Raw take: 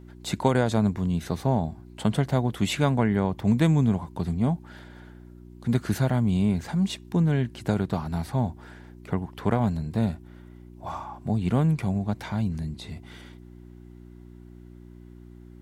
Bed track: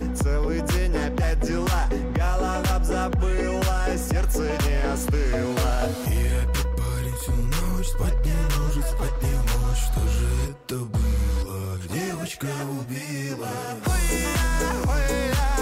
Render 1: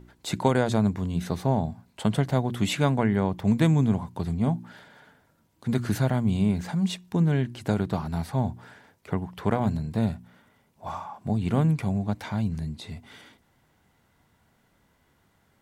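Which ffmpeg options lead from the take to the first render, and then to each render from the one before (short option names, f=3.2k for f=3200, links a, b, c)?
-af "bandreject=f=60:t=h:w=4,bandreject=f=120:t=h:w=4,bandreject=f=180:t=h:w=4,bandreject=f=240:t=h:w=4,bandreject=f=300:t=h:w=4,bandreject=f=360:t=h:w=4"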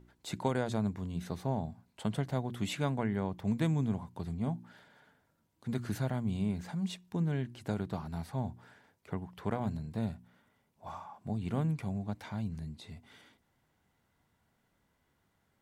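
-af "volume=-9.5dB"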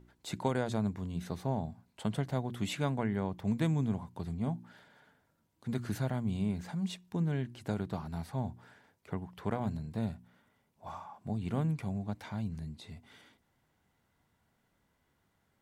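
-af anull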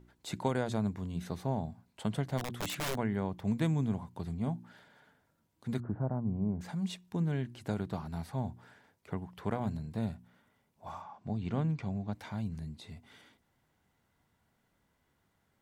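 -filter_complex "[0:a]asplit=3[a][b][c];[a]afade=t=out:st=2.37:d=0.02[d];[b]aeval=exprs='(mod(29.9*val(0)+1,2)-1)/29.9':c=same,afade=t=in:st=2.37:d=0.02,afade=t=out:st=2.94:d=0.02[e];[c]afade=t=in:st=2.94:d=0.02[f];[d][e][f]amix=inputs=3:normalize=0,asettb=1/sr,asplit=3[g][h][i];[g]atrim=end=5.804[j];[h]atrim=start=5.8:end=6.61,asetpts=PTS-STARTPTS,afade=t=in:d=0.004:c=qsin,afade=t=out:st=0.806:d=0.004:c=qsin,lowpass=f=1.1k:w=0.5412,lowpass=f=1.1k:w=1.3066[k];[i]atrim=start=6.606[l];[j][k]acrossfade=d=0.004:c1=hsin:c2=qsin[m];[m][l]acrossfade=d=0.004:c1=qsin:c2=hsin,asettb=1/sr,asplit=3[n][o][p];[n]atrim=end=11.024[q];[o]atrim=start=11.02:end=12.13,asetpts=PTS-STARTPTS,afade=t=in:d=0.004:c=qsin,afade=t=out:st=1.106:d=0.004:c=qsin,lowpass=f=6.5k:w=0.5412,lowpass=f=6.5k:w=1.3066[r];[p]atrim=start=12.126[s];[q][r]acrossfade=d=0.004:c1=hsin:c2=qsin[t];[t][s]acrossfade=d=0.004:c1=qsin:c2=hsin"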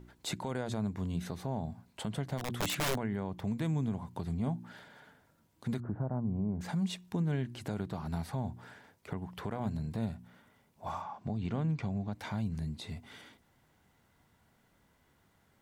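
-filter_complex "[0:a]asplit=2[a][b];[b]acompressor=threshold=-40dB:ratio=6,volume=0dB[c];[a][c]amix=inputs=2:normalize=0,alimiter=level_in=1dB:limit=-24dB:level=0:latency=1:release=142,volume=-1dB"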